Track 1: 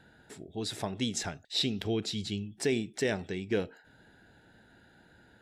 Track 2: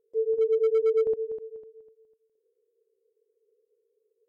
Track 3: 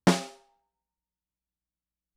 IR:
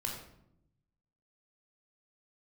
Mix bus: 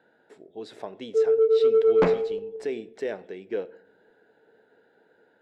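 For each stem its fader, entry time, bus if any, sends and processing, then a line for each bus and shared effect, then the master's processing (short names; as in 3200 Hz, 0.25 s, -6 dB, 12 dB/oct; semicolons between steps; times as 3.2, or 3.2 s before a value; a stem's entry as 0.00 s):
-2.5 dB, 0.00 s, send -17.5 dB, HPF 320 Hz 12 dB/oct; high shelf 2900 Hz -9 dB
-1.0 dB, 1.00 s, send -8 dB, dry
+1.5 dB, 1.95 s, no send, self-modulated delay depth 0.79 ms; elliptic low-pass 2500 Hz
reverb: on, RT60 0.80 s, pre-delay 17 ms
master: high shelf 5300 Hz -10 dB; soft clip -17 dBFS, distortion -17 dB; bell 490 Hz +5.5 dB 0.81 oct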